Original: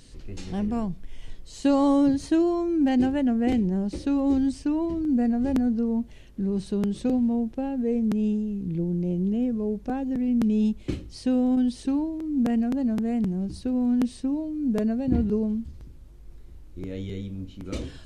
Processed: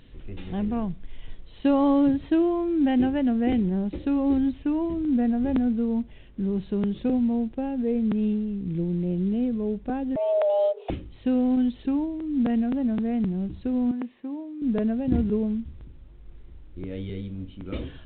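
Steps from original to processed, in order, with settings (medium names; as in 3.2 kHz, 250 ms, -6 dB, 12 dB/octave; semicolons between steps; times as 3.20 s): 10.16–10.90 s: frequency shift +390 Hz; 13.91–14.62 s: cabinet simulation 380–2300 Hz, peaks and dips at 450 Hz -5 dB, 660 Hz -6 dB, 1.4 kHz -6 dB; µ-law 64 kbps 8 kHz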